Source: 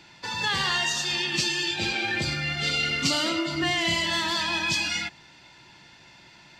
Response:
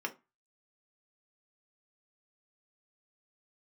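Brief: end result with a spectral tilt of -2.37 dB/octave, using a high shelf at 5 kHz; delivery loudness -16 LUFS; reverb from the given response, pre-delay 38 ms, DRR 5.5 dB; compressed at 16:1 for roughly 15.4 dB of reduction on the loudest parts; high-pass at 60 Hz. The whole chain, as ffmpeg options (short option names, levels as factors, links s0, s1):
-filter_complex "[0:a]highpass=60,highshelf=f=5000:g=-3,acompressor=threshold=0.0141:ratio=16,asplit=2[s0][s1];[1:a]atrim=start_sample=2205,adelay=38[s2];[s1][s2]afir=irnorm=-1:irlink=0,volume=0.355[s3];[s0][s3]amix=inputs=2:normalize=0,volume=12.6"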